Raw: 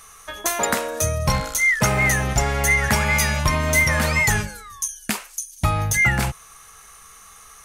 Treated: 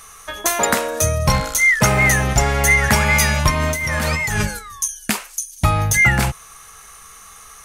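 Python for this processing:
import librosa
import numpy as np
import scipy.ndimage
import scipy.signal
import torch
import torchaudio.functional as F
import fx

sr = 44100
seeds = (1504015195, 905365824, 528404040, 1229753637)

y = fx.over_compress(x, sr, threshold_db=-24.0, ratio=-1.0, at=(3.5, 4.59))
y = y * librosa.db_to_amplitude(4.0)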